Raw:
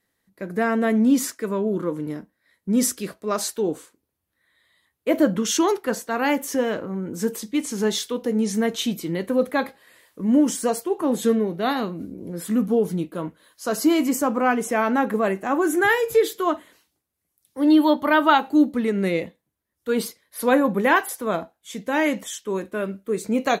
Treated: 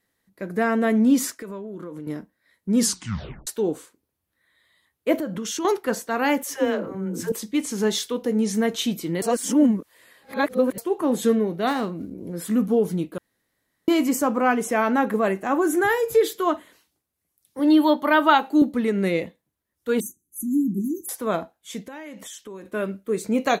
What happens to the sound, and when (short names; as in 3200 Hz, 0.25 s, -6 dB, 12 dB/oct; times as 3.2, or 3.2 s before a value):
1.31–2.07 compressor 10:1, threshold -31 dBFS
2.78 tape stop 0.69 s
5.15–5.65 compressor 3:1, threshold -28 dBFS
6.43–7.32 dispersion lows, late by 0.114 s, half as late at 350 Hz
9.22–10.78 reverse
11.67–12.15 median filter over 9 samples
13.18–13.88 room tone
15.55–16.21 dynamic EQ 2600 Hz, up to -7 dB, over -34 dBFS, Q 0.93
17.59–18.62 HPF 210 Hz
20–21.09 brick-wall FIR band-stop 380–5900 Hz
21.82–22.66 compressor 8:1, threshold -35 dBFS